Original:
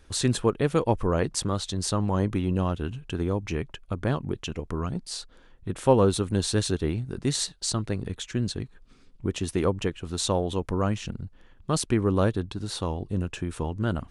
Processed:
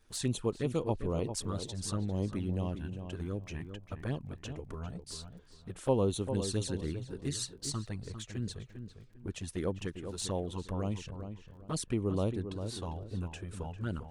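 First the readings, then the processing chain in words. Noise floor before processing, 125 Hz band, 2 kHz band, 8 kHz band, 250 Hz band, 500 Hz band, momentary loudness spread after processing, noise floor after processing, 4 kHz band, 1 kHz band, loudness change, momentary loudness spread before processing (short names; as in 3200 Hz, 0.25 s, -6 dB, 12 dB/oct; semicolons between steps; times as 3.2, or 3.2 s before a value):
-54 dBFS, -8.0 dB, -11.5 dB, -8.5 dB, -8.5 dB, -9.0 dB, 11 LU, -56 dBFS, -10.0 dB, -12.0 dB, -9.0 dB, 9 LU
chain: high shelf 8000 Hz +5.5 dB; envelope flanger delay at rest 9.1 ms, full sweep at -19.5 dBFS; crackle 20/s -48 dBFS; on a send: darkening echo 0.4 s, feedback 29%, low-pass 2000 Hz, level -8.5 dB; on the sum: gain -8 dB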